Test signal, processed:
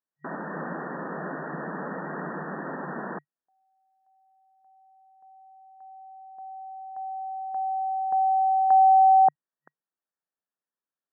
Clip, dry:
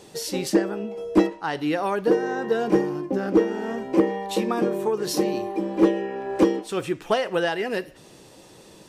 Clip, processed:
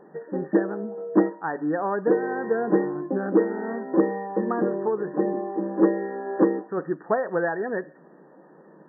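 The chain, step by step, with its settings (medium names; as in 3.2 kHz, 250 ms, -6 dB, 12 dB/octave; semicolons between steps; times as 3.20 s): FFT band-pass 140–1900 Hz; trim -1 dB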